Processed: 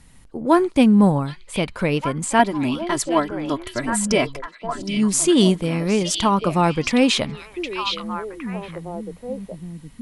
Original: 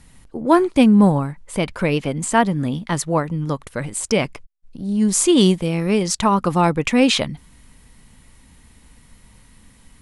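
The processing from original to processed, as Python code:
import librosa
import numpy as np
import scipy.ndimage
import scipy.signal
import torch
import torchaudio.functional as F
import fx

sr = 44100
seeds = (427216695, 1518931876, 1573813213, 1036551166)

y = fx.comb(x, sr, ms=3.0, depth=0.91, at=(2.39, 4.97))
y = fx.echo_stepped(y, sr, ms=765, hz=3500.0, octaves=-1.4, feedback_pct=70, wet_db=-3)
y = y * librosa.db_to_amplitude(-1.5)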